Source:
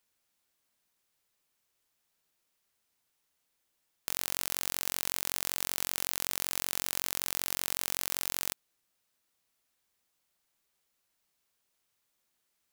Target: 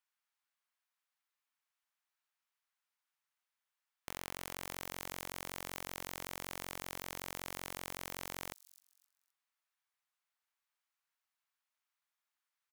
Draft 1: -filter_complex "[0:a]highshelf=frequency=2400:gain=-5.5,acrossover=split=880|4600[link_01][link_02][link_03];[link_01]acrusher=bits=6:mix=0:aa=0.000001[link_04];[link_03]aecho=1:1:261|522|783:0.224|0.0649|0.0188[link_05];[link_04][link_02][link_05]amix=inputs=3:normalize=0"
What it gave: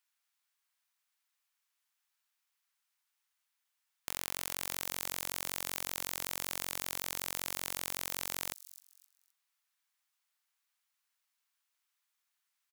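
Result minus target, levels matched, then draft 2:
2,000 Hz band −3.5 dB
-filter_complex "[0:a]highshelf=frequency=2400:gain=-15.5,acrossover=split=880|4600[link_01][link_02][link_03];[link_01]acrusher=bits=6:mix=0:aa=0.000001[link_04];[link_03]aecho=1:1:261|522|783:0.224|0.0649|0.0188[link_05];[link_04][link_02][link_05]amix=inputs=3:normalize=0"

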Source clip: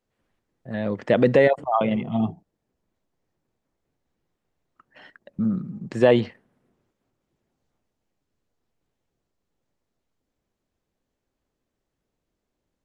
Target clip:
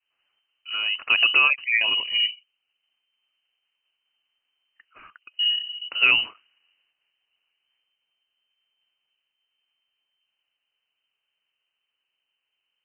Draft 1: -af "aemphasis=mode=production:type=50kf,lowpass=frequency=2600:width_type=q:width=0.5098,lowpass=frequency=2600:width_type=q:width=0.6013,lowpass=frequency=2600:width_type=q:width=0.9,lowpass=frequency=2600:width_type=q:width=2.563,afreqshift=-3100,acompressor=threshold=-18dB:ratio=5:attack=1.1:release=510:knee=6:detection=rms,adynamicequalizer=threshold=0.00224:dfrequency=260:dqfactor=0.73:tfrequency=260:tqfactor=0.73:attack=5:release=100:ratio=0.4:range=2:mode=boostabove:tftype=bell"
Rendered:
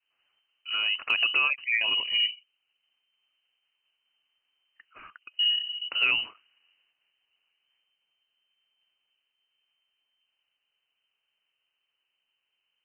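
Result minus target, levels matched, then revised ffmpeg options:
downward compressor: peak gain reduction +7 dB
-af "aemphasis=mode=production:type=50kf,lowpass=frequency=2600:width_type=q:width=0.5098,lowpass=frequency=2600:width_type=q:width=0.6013,lowpass=frequency=2600:width_type=q:width=0.9,lowpass=frequency=2600:width_type=q:width=2.563,afreqshift=-3100,acompressor=threshold=-8.5dB:ratio=5:attack=1.1:release=510:knee=6:detection=rms,adynamicequalizer=threshold=0.00224:dfrequency=260:dqfactor=0.73:tfrequency=260:tqfactor=0.73:attack=5:release=100:ratio=0.4:range=2:mode=boostabove:tftype=bell"

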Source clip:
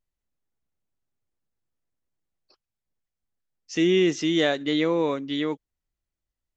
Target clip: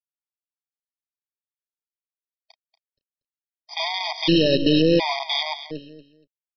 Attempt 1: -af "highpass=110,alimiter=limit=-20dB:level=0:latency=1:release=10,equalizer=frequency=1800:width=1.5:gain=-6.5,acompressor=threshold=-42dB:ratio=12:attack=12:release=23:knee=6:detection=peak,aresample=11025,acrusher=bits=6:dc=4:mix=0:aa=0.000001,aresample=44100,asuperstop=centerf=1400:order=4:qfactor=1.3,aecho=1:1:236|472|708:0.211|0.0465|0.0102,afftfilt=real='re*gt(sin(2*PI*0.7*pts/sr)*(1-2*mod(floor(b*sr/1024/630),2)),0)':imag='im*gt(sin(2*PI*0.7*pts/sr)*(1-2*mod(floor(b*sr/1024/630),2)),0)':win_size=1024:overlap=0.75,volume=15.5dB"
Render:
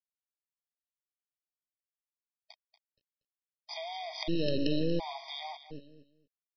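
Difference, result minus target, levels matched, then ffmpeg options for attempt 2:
downward compressor: peak gain reduction +10 dB; 125 Hz band +3.0 dB
-af "alimiter=limit=-20dB:level=0:latency=1:release=10,equalizer=frequency=1800:width=1.5:gain=-6.5,acompressor=threshold=-31dB:ratio=12:attack=12:release=23:knee=6:detection=peak,aresample=11025,acrusher=bits=6:dc=4:mix=0:aa=0.000001,aresample=44100,asuperstop=centerf=1400:order=4:qfactor=1.3,aecho=1:1:236|472|708:0.211|0.0465|0.0102,afftfilt=real='re*gt(sin(2*PI*0.7*pts/sr)*(1-2*mod(floor(b*sr/1024/630),2)),0)':imag='im*gt(sin(2*PI*0.7*pts/sr)*(1-2*mod(floor(b*sr/1024/630),2)),0)':win_size=1024:overlap=0.75,volume=15.5dB"

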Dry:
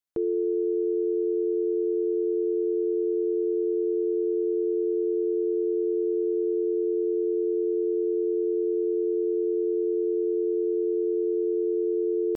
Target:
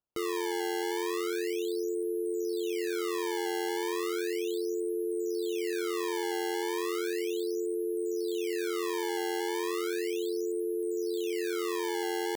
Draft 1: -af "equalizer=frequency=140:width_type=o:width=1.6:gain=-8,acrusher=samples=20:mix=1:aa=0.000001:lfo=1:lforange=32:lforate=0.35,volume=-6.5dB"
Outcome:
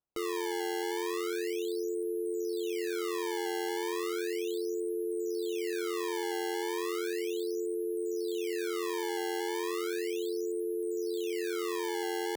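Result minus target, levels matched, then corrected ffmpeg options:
125 Hz band −4.0 dB
-af "acrusher=samples=20:mix=1:aa=0.000001:lfo=1:lforange=32:lforate=0.35,volume=-6.5dB"

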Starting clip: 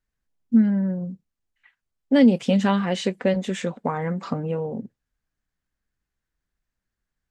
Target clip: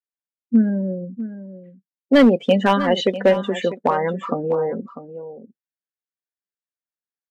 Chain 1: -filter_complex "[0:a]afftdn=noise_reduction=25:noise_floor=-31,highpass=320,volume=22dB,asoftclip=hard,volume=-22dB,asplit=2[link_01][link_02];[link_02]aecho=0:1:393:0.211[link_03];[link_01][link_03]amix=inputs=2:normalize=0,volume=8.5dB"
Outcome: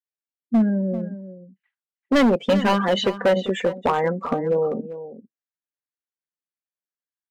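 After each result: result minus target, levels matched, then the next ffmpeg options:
echo 254 ms early; gain into a clipping stage and back: distortion +9 dB
-filter_complex "[0:a]afftdn=noise_reduction=25:noise_floor=-31,highpass=320,volume=22dB,asoftclip=hard,volume=-22dB,asplit=2[link_01][link_02];[link_02]aecho=0:1:647:0.211[link_03];[link_01][link_03]amix=inputs=2:normalize=0,volume=8.5dB"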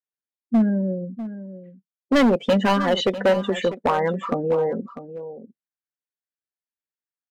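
gain into a clipping stage and back: distortion +9 dB
-filter_complex "[0:a]afftdn=noise_reduction=25:noise_floor=-31,highpass=320,volume=15.5dB,asoftclip=hard,volume=-15.5dB,asplit=2[link_01][link_02];[link_02]aecho=0:1:647:0.211[link_03];[link_01][link_03]amix=inputs=2:normalize=0,volume=8.5dB"

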